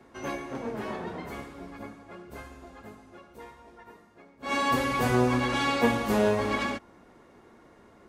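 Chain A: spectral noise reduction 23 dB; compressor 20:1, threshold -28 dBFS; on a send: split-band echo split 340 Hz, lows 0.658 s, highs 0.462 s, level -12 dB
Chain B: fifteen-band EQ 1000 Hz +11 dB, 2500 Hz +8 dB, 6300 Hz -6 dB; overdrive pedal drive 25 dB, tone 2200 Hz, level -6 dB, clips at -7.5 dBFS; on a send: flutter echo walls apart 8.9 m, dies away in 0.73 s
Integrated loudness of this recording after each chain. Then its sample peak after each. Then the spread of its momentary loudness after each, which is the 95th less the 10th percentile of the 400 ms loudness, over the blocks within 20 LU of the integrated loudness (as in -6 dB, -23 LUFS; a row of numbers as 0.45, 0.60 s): -34.5, -15.0 LUFS; -19.5, -3.0 dBFS; 22, 21 LU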